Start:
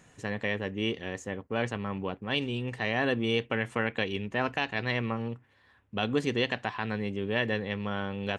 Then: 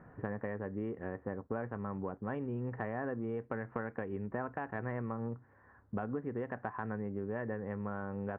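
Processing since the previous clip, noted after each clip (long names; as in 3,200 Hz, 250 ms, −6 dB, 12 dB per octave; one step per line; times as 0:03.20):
Butterworth low-pass 1,600 Hz 36 dB per octave
downward compressor 10 to 1, threshold −38 dBFS, peak gain reduction 16 dB
level +4 dB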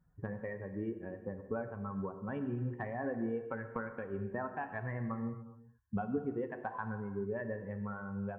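spectral dynamics exaggerated over time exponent 2
reverb whose tail is shaped and stops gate 460 ms falling, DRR 6.5 dB
level +4 dB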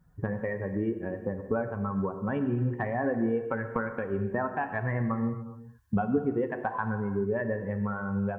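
camcorder AGC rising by 8 dB per second
level +8.5 dB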